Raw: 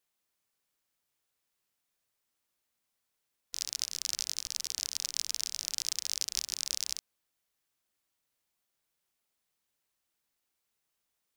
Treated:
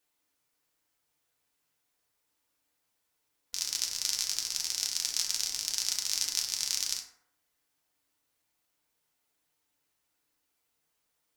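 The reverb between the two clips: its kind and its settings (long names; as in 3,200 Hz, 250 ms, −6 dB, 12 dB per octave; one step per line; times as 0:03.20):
feedback delay network reverb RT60 0.76 s, low-frequency decay 0.8×, high-frequency decay 0.45×, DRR −0.5 dB
level +1.5 dB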